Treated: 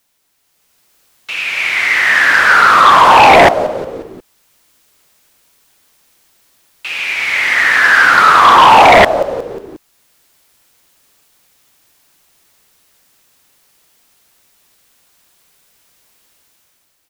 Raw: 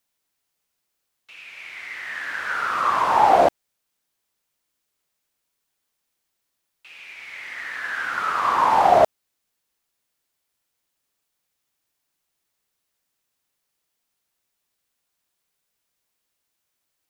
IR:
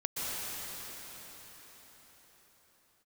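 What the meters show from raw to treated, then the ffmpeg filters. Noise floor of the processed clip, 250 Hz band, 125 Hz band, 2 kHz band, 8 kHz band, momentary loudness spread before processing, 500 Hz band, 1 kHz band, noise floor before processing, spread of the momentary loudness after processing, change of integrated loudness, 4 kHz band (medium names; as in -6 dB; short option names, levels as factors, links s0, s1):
-60 dBFS, +14.0 dB, +15.5 dB, +19.5 dB, no reading, 20 LU, +10.5 dB, +12.5 dB, -78 dBFS, 15 LU, +12.5 dB, +21.0 dB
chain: -filter_complex "[0:a]dynaudnorm=f=200:g=7:m=2.82,asplit=5[s0][s1][s2][s3][s4];[s1]adelay=179,afreqshift=-80,volume=0.141[s5];[s2]adelay=358,afreqshift=-160,volume=0.0724[s6];[s3]adelay=537,afreqshift=-240,volume=0.0367[s7];[s4]adelay=716,afreqshift=-320,volume=0.0188[s8];[s0][s5][s6][s7][s8]amix=inputs=5:normalize=0,aeval=exprs='0.891*sin(PI/2*3.16*val(0)/0.891)':c=same"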